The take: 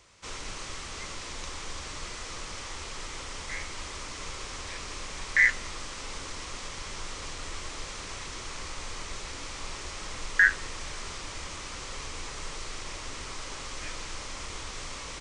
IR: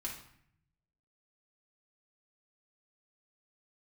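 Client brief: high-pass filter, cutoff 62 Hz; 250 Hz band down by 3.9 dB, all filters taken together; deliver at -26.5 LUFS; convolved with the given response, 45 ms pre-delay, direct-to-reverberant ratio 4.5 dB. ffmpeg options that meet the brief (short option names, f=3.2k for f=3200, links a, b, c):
-filter_complex "[0:a]highpass=62,equalizer=f=250:t=o:g=-5.5,asplit=2[a][b];[1:a]atrim=start_sample=2205,adelay=45[c];[b][c]afir=irnorm=-1:irlink=0,volume=-4dB[d];[a][d]amix=inputs=2:normalize=0,volume=5.5dB"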